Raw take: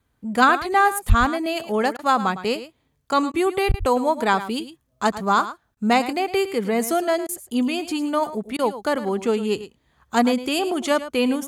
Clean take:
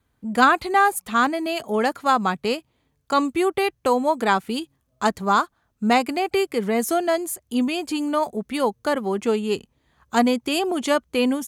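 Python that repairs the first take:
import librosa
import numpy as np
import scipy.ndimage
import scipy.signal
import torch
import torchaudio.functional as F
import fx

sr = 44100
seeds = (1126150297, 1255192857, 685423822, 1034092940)

y = fx.highpass(x, sr, hz=140.0, slope=24, at=(1.08, 1.2), fade=0.02)
y = fx.highpass(y, sr, hz=140.0, slope=24, at=(3.68, 3.8), fade=0.02)
y = fx.fix_interpolate(y, sr, at_s=(1.97, 3.32, 3.72, 5.75, 7.27, 8.57), length_ms=17.0)
y = fx.fix_echo_inverse(y, sr, delay_ms=108, level_db=-13.5)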